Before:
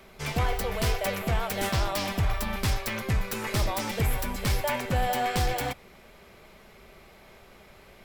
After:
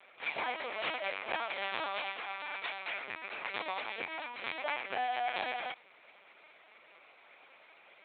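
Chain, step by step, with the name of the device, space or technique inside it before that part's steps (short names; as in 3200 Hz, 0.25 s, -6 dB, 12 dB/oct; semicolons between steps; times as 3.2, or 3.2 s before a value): 2–3.01 HPF 270 Hz 24 dB/oct; talking toy (LPC vocoder at 8 kHz pitch kept; HPF 680 Hz 12 dB/oct; bell 2400 Hz +6 dB 0.21 oct); gain -4 dB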